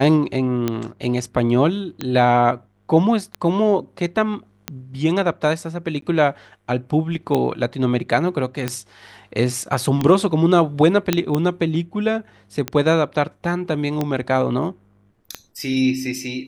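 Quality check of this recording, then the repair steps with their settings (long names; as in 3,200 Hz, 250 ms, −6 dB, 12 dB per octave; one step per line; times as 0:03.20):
scratch tick 45 rpm −8 dBFS
0:06.01–0:06.02: drop-out 13 ms
0:11.13: click −2 dBFS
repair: click removal
repair the gap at 0:06.01, 13 ms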